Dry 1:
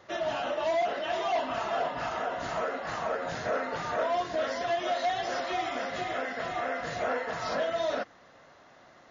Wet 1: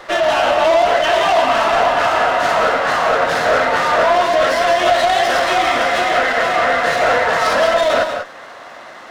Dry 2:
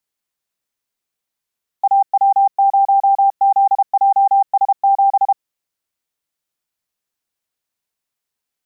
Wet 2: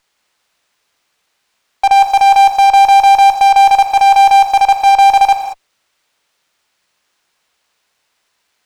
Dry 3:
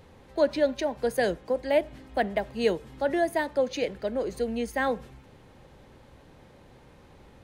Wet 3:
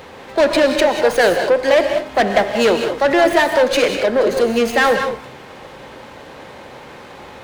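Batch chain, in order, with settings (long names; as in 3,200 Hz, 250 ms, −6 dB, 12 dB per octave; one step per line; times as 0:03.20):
mid-hump overdrive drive 24 dB, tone 4,600 Hz, clips at −8.5 dBFS
reverb whose tail is shaped and stops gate 220 ms rising, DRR 5.5 dB
windowed peak hold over 3 samples
level +3.5 dB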